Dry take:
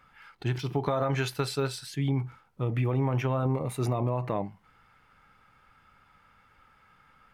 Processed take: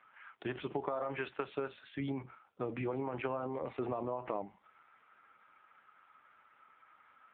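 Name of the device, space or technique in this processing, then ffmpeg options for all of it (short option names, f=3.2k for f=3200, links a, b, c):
voicemail: -af "highpass=310,lowpass=3.2k,acompressor=threshold=-33dB:ratio=10,volume=1.5dB" -ar 8000 -c:a libopencore_amrnb -b:a 5900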